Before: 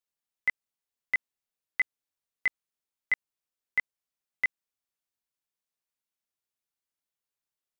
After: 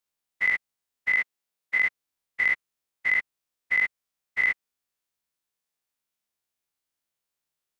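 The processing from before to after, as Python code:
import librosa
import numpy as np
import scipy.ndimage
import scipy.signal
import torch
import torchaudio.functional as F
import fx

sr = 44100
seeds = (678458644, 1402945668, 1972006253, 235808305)

y = fx.spec_dilate(x, sr, span_ms=120)
y = fx.highpass(y, sr, hz=140.0, slope=12, at=(1.15, 1.81))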